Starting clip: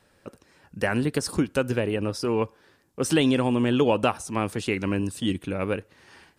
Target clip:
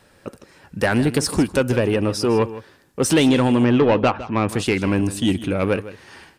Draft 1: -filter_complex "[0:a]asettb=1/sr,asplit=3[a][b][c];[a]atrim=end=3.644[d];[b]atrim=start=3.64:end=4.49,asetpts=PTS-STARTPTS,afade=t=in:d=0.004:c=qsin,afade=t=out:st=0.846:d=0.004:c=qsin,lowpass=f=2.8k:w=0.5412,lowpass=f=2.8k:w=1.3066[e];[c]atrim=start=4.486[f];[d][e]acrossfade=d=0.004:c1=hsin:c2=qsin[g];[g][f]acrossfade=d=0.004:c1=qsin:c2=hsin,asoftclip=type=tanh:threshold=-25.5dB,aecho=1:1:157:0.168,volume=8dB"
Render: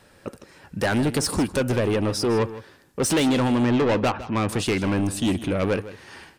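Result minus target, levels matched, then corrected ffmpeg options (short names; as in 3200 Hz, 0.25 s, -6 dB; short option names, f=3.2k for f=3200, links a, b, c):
soft clip: distortion +7 dB
-filter_complex "[0:a]asettb=1/sr,asplit=3[a][b][c];[a]atrim=end=3.644[d];[b]atrim=start=3.64:end=4.49,asetpts=PTS-STARTPTS,afade=t=in:d=0.004:c=qsin,afade=t=out:st=0.846:d=0.004:c=qsin,lowpass=f=2.8k:w=0.5412,lowpass=f=2.8k:w=1.3066[e];[c]atrim=start=4.486[f];[d][e]acrossfade=d=0.004:c1=hsin:c2=qsin[g];[g][f]acrossfade=d=0.004:c1=qsin:c2=hsin,asoftclip=type=tanh:threshold=-17.5dB,aecho=1:1:157:0.168,volume=8dB"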